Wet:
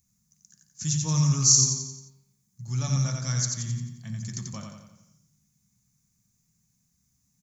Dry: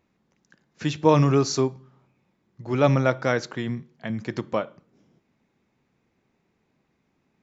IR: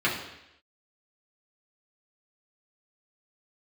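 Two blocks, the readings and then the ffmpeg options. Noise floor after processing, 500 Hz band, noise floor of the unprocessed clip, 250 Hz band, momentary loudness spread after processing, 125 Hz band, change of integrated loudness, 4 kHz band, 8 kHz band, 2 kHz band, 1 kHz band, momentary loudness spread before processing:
-73 dBFS, -23.5 dB, -72 dBFS, -7.5 dB, 19 LU, 0.0 dB, -0.5 dB, +6.0 dB, no reading, -13.5 dB, -15.5 dB, 14 LU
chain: -filter_complex "[0:a]firequalizer=gain_entry='entry(140,0);entry(310,-25);entry(490,-28);entry(1100,-18);entry(2700,-18);entry(6200,15)':delay=0.05:min_phase=1,aecho=1:1:88|176|264|352|440|528:0.631|0.303|0.145|0.0698|0.0335|0.0161,asplit=2[s0][s1];[1:a]atrim=start_sample=2205[s2];[s1][s2]afir=irnorm=-1:irlink=0,volume=0.126[s3];[s0][s3]amix=inputs=2:normalize=0,volume=1.12"

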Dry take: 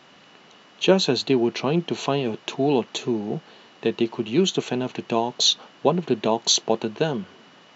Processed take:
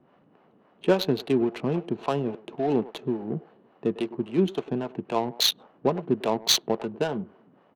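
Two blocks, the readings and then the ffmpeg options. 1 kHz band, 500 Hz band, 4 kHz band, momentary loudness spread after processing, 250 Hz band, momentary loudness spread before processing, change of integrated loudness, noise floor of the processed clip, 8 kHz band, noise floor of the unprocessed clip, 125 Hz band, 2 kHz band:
-4.0 dB, -3.5 dB, -4.0 dB, 9 LU, -3.5 dB, 8 LU, -4.0 dB, -61 dBFS, no reading, -52 dBFS, -3.5 dB, -5.0 dB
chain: -filter_complex "[0:a]asplit=2[s0][s1];[s1]adelay=100,highpass=300,lowpass=3400,asoftclip=type=hard:threshold=0.2,volume=0.178[s2];[s0][s2]amix=inputs=2:normalize=0,acrossover=split=450[s3][s4];[s3]aeval=exprs='val(0)*(1-0.7/2+0.7/2*cos(2*PI*3.6*n/s))':c=same[s5];[s4]aeval=exprs='val(0)*(1-0.7/2-0.7/2*cos(2*PI*3.6*n/s))':c=same[s6];[s5][s6]amix=inputs=2:normalize=0,adynamicsmooth=sensitivity=2:basefreq=830"

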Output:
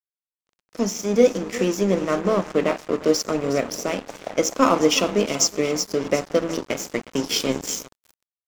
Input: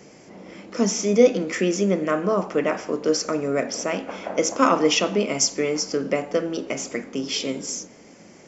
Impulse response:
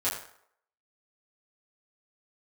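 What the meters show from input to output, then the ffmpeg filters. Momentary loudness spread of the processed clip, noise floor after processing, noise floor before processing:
9 LU, under -85 dBFS, -48 dBFS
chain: -filter_complex "[0:a]equalizer=f=1600:w=1.8:g=-5,asplit=2[s0][s1];[s1]aecho=0:1:363|726|1089|1452|1815:0.2|0.102|0.0519|0.0265|0.0135[s2];[s0][s2]amix=inputs=2:normalize=0,aeval=exprs='sgn(val(0))*max(abs(val(0))-0.0237,0)':c=same,dynaudnorm=f=240:g=13:m=3.76,volume=0.891"

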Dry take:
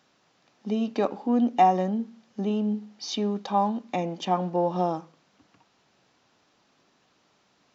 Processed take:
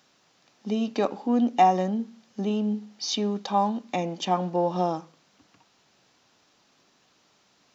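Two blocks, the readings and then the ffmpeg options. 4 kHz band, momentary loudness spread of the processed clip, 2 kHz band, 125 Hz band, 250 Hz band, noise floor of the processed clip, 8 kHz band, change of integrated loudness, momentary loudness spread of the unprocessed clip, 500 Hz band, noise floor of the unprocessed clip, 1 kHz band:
+4.0 dB, 11 LU, +2.0 dB, 0.0 dB, 0.0 dB, -65 dBFS, no reading, +0.5 dB, 12 LU, 0.0 dB, -67 dBFS, +0.5 dB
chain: -af "highshelf=f=3600:g=7.5"

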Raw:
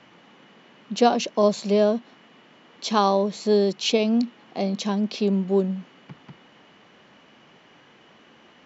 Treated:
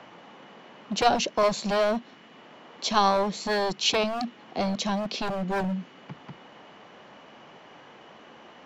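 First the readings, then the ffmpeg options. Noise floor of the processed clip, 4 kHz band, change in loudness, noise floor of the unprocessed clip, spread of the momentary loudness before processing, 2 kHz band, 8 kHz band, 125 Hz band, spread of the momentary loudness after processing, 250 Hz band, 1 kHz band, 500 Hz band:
-51 dBFS, +1.0 dB, -3.5 dB, -54 dBFS, 9 LU, +4.0 dB, no reading, -5.0 dB, 11 LU, -7.5 dB, +0.5 dB, -5.0 dB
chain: -filter_complex "[0:a]acrossover=split=560|1000[s0][s1][s2];[s0]aeval=exprs='0.0562*(abs(mod(val(0)/0.0562+3,4)-2)-1)':c=same[s3];[s1]acompressor=mode=upward:threshold=0.00562:ratio=2.5[s4];[s3][s4][s2]amix=inputs=3:normalize=0,volume=1.12"

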